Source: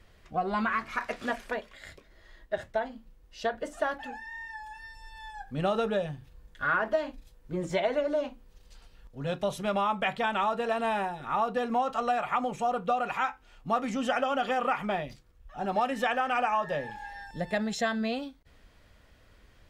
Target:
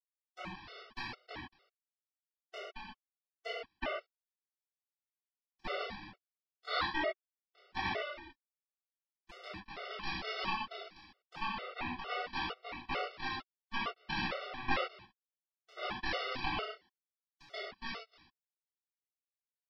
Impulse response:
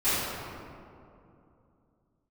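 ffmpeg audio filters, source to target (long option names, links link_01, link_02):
-filter_complex "[0:a]aeval=exprs='val(0)+0.0224*sin(2*PI*890*n/s)':channel_layout=same,aresample=11025,acrusher=bits=2:mix=0:aa=0.5,aresample=44100,acompressor=mode=upward:threshold=-48dB:ratio=2.5[link_01];[1:a]atrim=start_sample=2205,afade=type=out:start_time=0.21:duration=0.01,atrim=end_sample=9702[link_02];[link_01][link_02]afir=irnorm=-1:irlink=0,afftfilt=real='re*gt(sin(2*PI*2.2*pts/sr)*(1-2*mod(floor(b*sr/1024/380),2)),0)':imag='im*gt(sin(2*PI*2.2*pts/sr)*(1-2*mod(floor(b*sr/1024/380),2)),0)':win_size=1024:overlap=0.75,volume=-4.5dB"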